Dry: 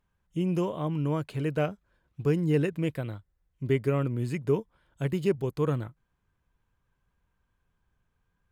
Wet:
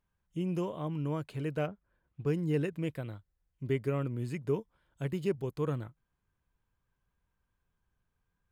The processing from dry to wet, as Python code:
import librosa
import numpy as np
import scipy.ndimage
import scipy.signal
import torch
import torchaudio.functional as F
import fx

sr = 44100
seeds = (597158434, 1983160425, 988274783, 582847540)

y = fx.lowpass(x, sr, hz=fx.line((1.66, 1900.0), (2.25, 3500.0)), slope=12, at=(1.66, 2.25), fade=0.02)
y = F.gain(torch.from_numpy(y), -5.5).numpy()